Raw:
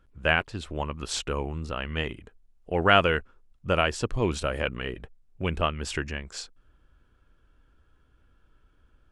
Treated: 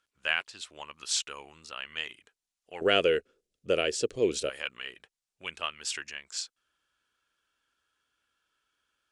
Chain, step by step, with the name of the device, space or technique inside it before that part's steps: piezo pickup straight into a mixer (low-pass 7.2 kHz 12 dB/octave; differentiator); 2.81–4.50 s: resonant low shelf 660 Hz +13 dB, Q 3; trim +7 dB

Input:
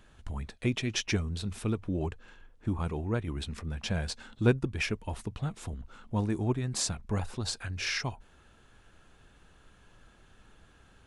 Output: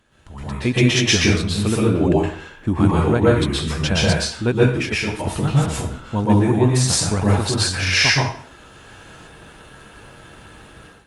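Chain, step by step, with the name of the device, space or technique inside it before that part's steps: far-field microphone of a smart speaker (reverberation RT60 0.50 s, pre-delay 114 ms, DRR -5.5 dB; high-pass 88 Hz 6 dB/octave; level rider gain up to 15 dB; trim -1 dB; Opus 48 kbps 48 kHz)

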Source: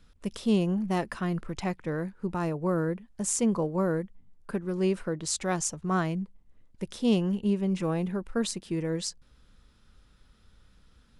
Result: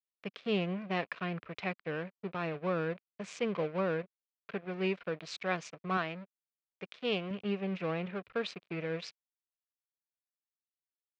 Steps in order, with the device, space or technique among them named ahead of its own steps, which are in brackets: blown loudspeaker (crossover distortion -41 dBFS; cabinet simulation 200–4000 Hz, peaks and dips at 230 Hz -10 dB, 340 Hz -7 dB, 870 Hz -8 dB, 2.4 kHz +8 dB); 5.97–7.31 s: bass shelf 230 Hz -8.5 dB

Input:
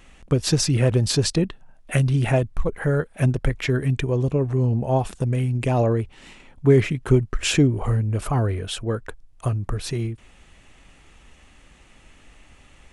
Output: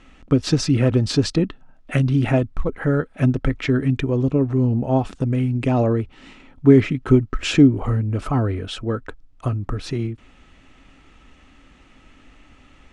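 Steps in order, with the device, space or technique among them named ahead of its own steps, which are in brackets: inside a cardboard box (low-pass 5.4 kHz 12 dB/octave; small resonant body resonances 270/1300 Hz, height 9 dB)

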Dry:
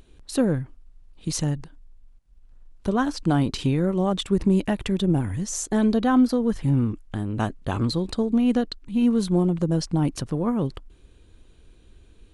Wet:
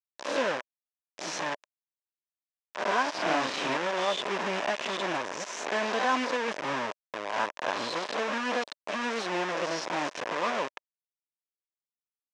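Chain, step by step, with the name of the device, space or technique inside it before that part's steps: reverse spectral sustain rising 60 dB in 0.69 s; hand-held game console (bit crusher 4-bit; cabinet simulation 460–5900 Hz, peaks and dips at 600 Hz +7 dB, 1 kHz +7 dB, 1.7 kHz +5 dB, 2.5 kHz +3 dB, 4.4 kHz -5 dB); 3.15–3.77 s: doubling 38 ms -2 dB; trim -7 dB

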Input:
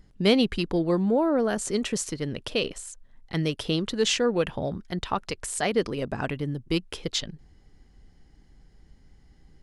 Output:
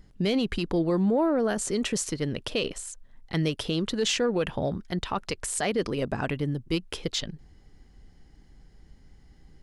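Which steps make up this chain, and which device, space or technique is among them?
soft clipper into limiter (saturation -10 dBFS, distortion -26 dB; peak limiter -19 dBFS, peak gain reduction 7.5 dB); trim +1.5 dB

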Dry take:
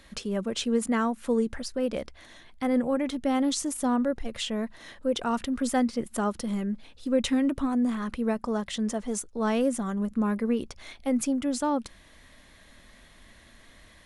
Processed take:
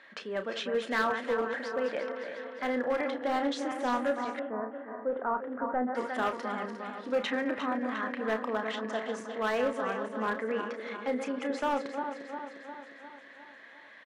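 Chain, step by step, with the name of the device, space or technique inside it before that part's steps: backward echo that repeats 177 ms, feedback 75%, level -8 dB; megaphone (band-pass 460–2700 Hz; peaking EQ 1.7 kHz +8 dB 0.47 oct; hard clipper -23 dBFS, distortion -16 dB; doubling 32 ms -9 dB); 4.39–5.95 s: low-pass 1.3 kHz 24 dB/octave

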